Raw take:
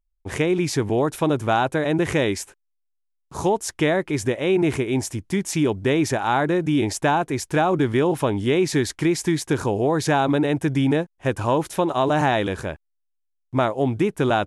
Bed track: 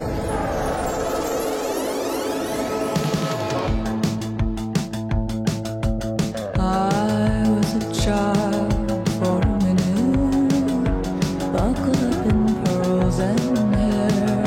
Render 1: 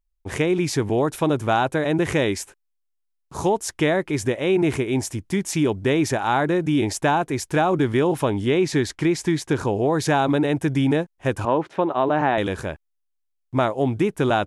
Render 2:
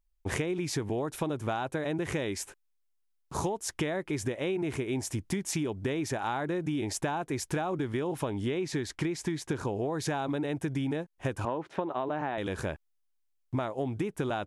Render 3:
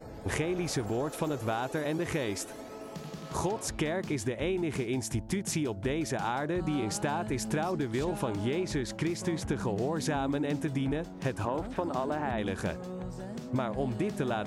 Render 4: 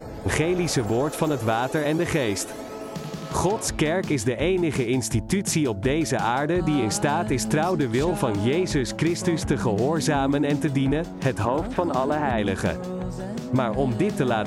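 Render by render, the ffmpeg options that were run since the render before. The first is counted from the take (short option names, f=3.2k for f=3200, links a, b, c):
-filter_complex "[0:a]asettb=1/sr,asplit=3[a][b][c];[a]atrim=end=8.454[d];[b]atrim=start=8.45:end=9.92,asetpts=PTS-STARTPTS,afade=t=in:d=0.004:c=qsin,afade=t=out:st=1.466:d=0.004:c=qsin,highshelf=f=9.8k:g=-10.5[e];[c]atrim=start=9.916[f];[d][e]acrossfade=d=0.004:c1=hsin:c2=qsin[g];[g][f]acrossfade=d=0.004:c1=qsin:c2=hsin,asettb=1/sr,asplit=3[h][i][j];[h]atrim=end=11.454[k];[i]atrim=start=11.45:end=12.38,asetpts=PTS-STARTPTS,afade=t=in:d=0.004:c=qsin,afade=t=out:st=0.926:d=0.004:c=qsin,highpass=180,lowpass=2.3k[l];[j]atrim=start=12.376[m];[k][l]acrossfade=d=0.004:c1=hsin:c2=qsin[n];[n][m]acrossfade=d=0.004:c1=qsin:c2=hsin"
-af "acompressor=threshold=-28dB:ratio=12"
-filter_complex "[1:a]volume=-20dB[a];[0:a][a]amix=inputs=2:normalize=0"
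-af "volume=8.5dB"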